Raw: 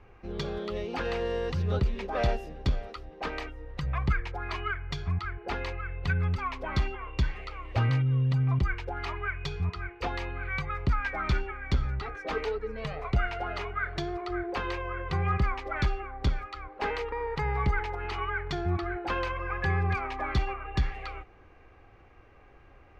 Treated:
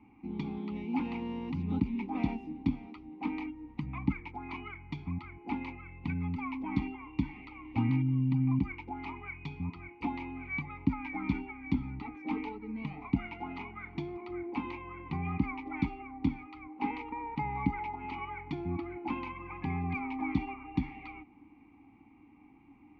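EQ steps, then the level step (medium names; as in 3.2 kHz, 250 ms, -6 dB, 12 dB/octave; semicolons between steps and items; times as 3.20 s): vowel filter u; resonant low shelf 300 Hz +7 dB, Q 3; +8.5 dB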